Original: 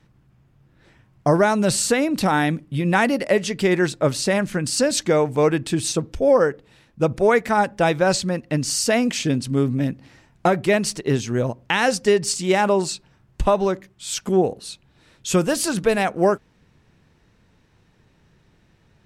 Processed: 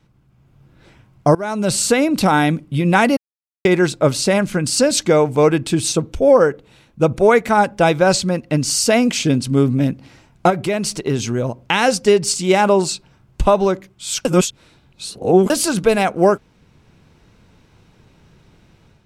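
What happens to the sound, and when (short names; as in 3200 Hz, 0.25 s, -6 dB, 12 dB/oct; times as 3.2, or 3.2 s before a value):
1.35–2.07 fade in equal-power, from -24 dB
3.17–3.65 mute
5.95–7.6 notch 5000 Hz
10.5–11.58 compressor 2:1, threshold -24 dBFS
14.25–15.5 reverse
whole clip: notch 1800 Hz, Q 8.6; AGC gain up to 7.5 dB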